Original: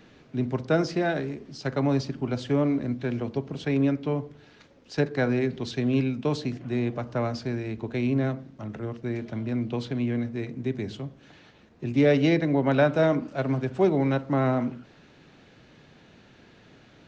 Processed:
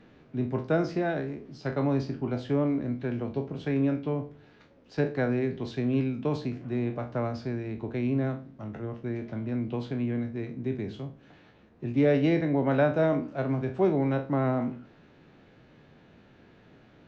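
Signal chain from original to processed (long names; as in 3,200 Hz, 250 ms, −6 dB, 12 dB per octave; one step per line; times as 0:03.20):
peak hold with a decay on every bin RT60 0.32 s
low-pass filter 1,800 Hz 6 dB per octave
level −2.5 dB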